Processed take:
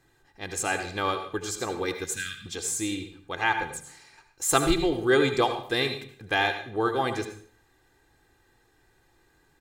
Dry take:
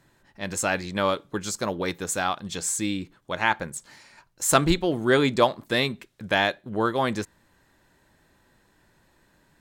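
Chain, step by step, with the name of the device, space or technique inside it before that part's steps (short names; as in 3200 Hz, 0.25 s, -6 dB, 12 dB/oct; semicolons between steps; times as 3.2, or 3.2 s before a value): 2.04–2.46 Chebyshev band-stop 240–1600 Hz, order 4; microphone above a desk (comb 2.5 ms, depth 66%; reverb RT60 0.50 s, pre-delay 67 ms, DRR 7.5 dB); gain -4 dB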